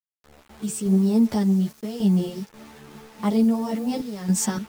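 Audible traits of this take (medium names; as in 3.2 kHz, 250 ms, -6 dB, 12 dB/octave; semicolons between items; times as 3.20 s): random-step tremolo, depth 75%; a quantiser's noise floor 8-bit, dither none; a shimmering, thickened sound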